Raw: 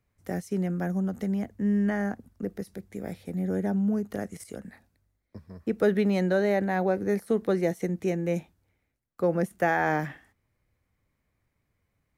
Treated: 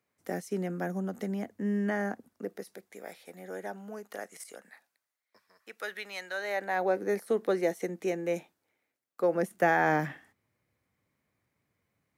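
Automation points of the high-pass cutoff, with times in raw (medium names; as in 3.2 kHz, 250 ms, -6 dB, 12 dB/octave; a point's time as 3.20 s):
2.13 s 260 Hz
3.09 s 670 Hz
4.47 s 670 Hz
5.67 s 1.4 kHz
6.30 s 1.4 kHz
6.94 s 350 Hz
9.31 s 350 Hz
9.77 s 130 Hz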